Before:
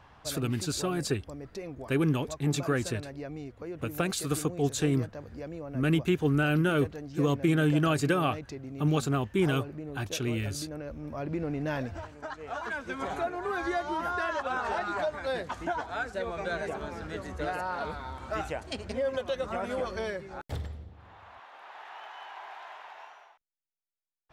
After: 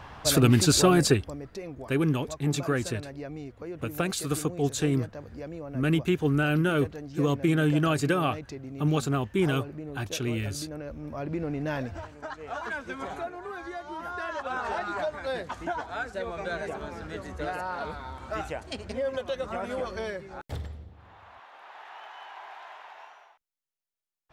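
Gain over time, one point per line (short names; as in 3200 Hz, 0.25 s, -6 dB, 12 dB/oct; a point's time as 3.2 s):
0.94 s +11 dB
1.51 s +1 dB
12.75 s +1 dB
13.71 s -8 dB
14.61 s 0 dB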